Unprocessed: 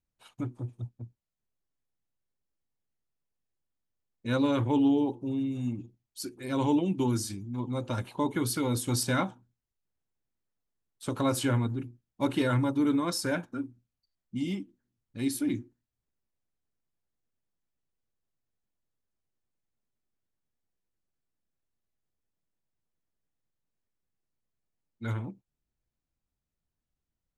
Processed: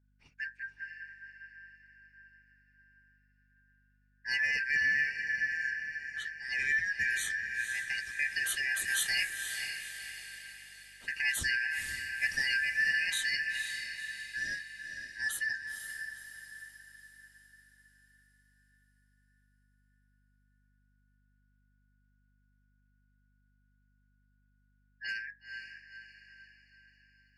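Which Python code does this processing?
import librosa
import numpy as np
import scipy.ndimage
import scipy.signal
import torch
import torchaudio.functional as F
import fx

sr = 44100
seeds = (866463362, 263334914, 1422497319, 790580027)

y = fx.band_shuffle(x, sr, order='3142')
y = fx.env_lowpass(y, sr, base_hz=2600.0, full_db=-25.0)
y = fx.peak_eq(y, sr, hz=830.0, db=-14.5, octaves=1.6)
y = fx.echo_diffused(y, sr, ms=497, feedback_pct=50, wet_db=-6.5)
y = fx.add_hum(y, sr, base_hz=50, snr_db=33)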